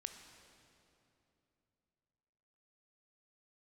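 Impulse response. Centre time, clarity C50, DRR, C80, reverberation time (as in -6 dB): 40 ms, 7.0 dB, 6.0 dB, 8.0 dB, 3.0 s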